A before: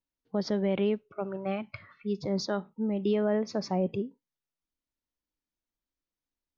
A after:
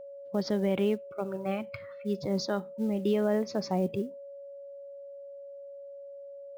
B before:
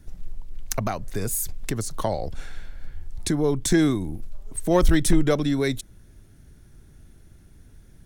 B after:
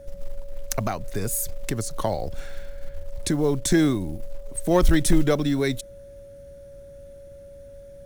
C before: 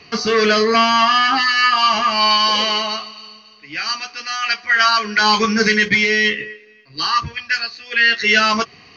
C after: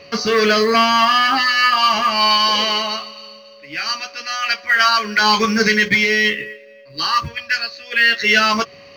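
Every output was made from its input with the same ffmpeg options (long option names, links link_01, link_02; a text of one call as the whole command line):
ffmpeg -i in.wav -af "acrusher=bits=8:mode=log:mix=0:aa=0.000001,aeval=exprs='val(0)+0.00794*sin(2*PI*560*n/s)':channel_layout=same" out.wav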